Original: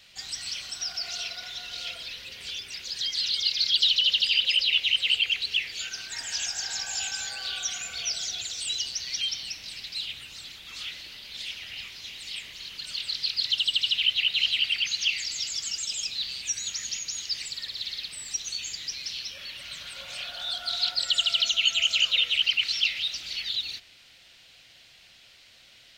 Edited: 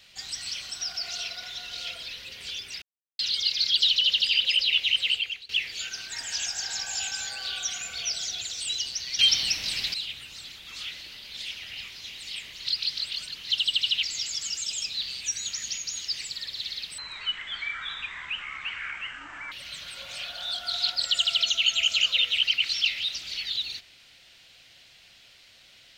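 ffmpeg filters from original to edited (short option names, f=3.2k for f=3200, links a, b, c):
-filter_complex "[0:a]asplit=11[a][b][c][d][e][f][g][h][i][j][k];[a]atrim=end=2.82,asetpts=PTS-STARTPTS,afade=t=out:st=2.816:d=0.004:c=hsin[l];[b]atrim=start=2.82:end=3.19,asetpts=PTS-STARTPTS,volume=0[m];[c]atrim=start=3.19:end=5.49,asetpts=PTS-STARTPTS,afade=t=in:d=0.004:c=hsin,afade=t=out:st=1.84:d=0.46:silence=0.0707946[n];[d]atrim=start=5.49:end=9.192,asetpts=PTS-STARTPTS,afade=t=in:d=0.004:c=hsin:silence=0.0707946[o];[e]atrim=start=9.188:end=9.942,asetpts=PTS-STARTPTS,volume=9.5dB[p];[f]atrim=start=9.938:end=12.652[q];[g]atrim=start=12.648:end=13.482,asetpts=PTS-STARTPTS,areverse[r];[h]atrim=start=13.478:end=14.032[s];[i]atrim=start=15.238:end=18.194[t];[j]atrim=start=18.19:end=19.51,asetpts=PTS-STARTPTS,asetrate=22932,aresample=44100,atrim=end_sample=111946,asetpts=PTS-STARTPTS[u];[k]atrim=start=19.506[v];[l][m][n][o]concat=n=4:v=0:a=1[w];[w][p]acrossfade=d=0.004:c1=hsin:c2=hsin[x];[x][q]acrossfade=d=0.004:c1=hsin:c2=hsin[y];[y][r]acrossfade=d=0.004:c1=hsin:c2=hsin[z];[z][s]acrossfade=d=0.004:c1=hsin:c2=hsin[aa];[aa][t]acrossfade=d=0.004:c1=hsin:c2=hsin[ab];[ab][u]acrossfade=d=0.004:c1=hsin:c2=hsin[ac];[ac][v]acrossfade=d=0.004:c1=hsin:c2=hsin"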